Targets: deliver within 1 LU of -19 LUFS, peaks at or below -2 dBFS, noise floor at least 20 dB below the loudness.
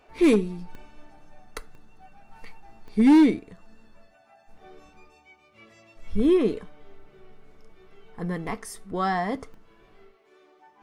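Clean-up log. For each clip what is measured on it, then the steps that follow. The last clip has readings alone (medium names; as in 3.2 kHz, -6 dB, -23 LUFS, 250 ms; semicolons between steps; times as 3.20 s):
clipped samples 0.6%; clipping level -12.0 dBFS; dropouts 5; longest dropout 1.5 ms; loudness -23.5 LUFS; peak level -12.0 dBFS; loudness target -19.0 LUFS
-> clip repair -12 dBFS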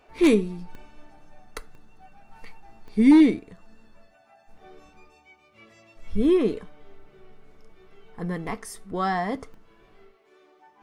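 clipped samples 0.0%; dropouts 5; longest dropout 1.5 ms
-> interpolate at 0.75/1.75/2.88/8.47/9.54 s, 1.5 ms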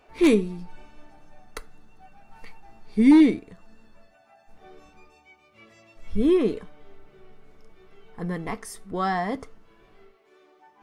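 dropouts 0; loudness -22.5 LUFS; peak level -6.5 dBFS; loudness target -19.0 LUFS
-> trim +3.5 dB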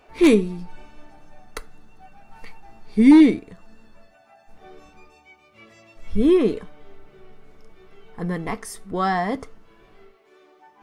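loudness -19.0 LUFS; peak level -3.0 dBFS; noise floor -56 dBFS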